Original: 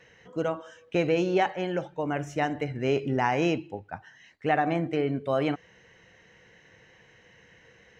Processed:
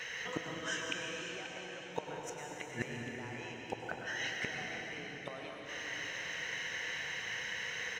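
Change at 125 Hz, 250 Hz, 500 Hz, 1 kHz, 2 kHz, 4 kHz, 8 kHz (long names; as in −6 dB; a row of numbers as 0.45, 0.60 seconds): −15.5 dB, −17.0 dB, −16.5 dB, −15.5 dB, −1.5 dB, +1.0 dB, can't be measured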